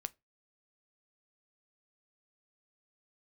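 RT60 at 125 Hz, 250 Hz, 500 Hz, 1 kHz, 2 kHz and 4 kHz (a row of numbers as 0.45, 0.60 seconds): 0.30, 0.25, 0.25, 0.20, 0.20, 0.15 seconds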